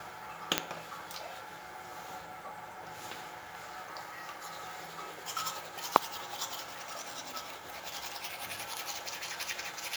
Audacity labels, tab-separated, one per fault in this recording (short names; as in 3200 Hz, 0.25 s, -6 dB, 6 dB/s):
0.580000	0.580000	pop -7 dBFS